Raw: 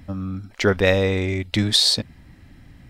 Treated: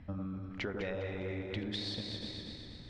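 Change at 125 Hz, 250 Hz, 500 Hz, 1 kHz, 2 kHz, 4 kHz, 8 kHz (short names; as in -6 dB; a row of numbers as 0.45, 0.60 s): -16.5, -14.5, -18.0, -17.0, -18.0, -20.5, -29.5 dB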